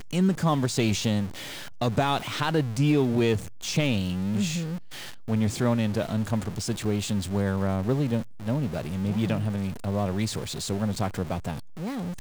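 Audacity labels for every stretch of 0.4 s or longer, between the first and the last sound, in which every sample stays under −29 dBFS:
1.260000	1.810000	silence
4.770000	5.280000	silence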